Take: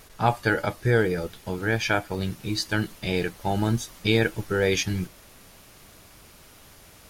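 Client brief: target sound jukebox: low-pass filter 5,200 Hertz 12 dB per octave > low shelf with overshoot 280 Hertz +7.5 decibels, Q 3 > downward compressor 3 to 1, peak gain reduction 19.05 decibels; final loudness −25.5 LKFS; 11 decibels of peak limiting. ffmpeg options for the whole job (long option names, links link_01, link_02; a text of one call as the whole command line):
ffmpeg -i in.wav -af "alimiter=limit=-18dB:level=0:latency=1,lowpass=5200,lowshelf=frequency=280:width_type=q:width=3:gain=7.5,acompressor=threshold=-39dB:ratio=3,volume=14dB" out.wav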